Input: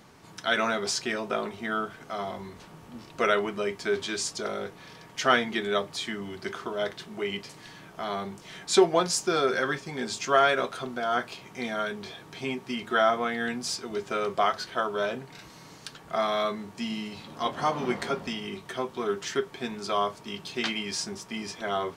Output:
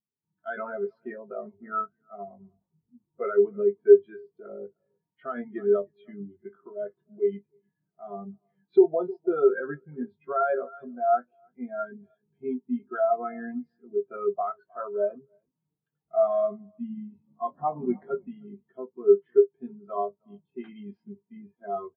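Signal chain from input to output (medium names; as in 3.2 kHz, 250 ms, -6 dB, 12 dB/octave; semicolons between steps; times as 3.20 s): distance through air 380 m; doubling 20 ms -8 dB; delay 309 ms -15.5 dB; loudness maximiser +17.5 dB; spectral contrast expander 2.5:1; trim -4 dB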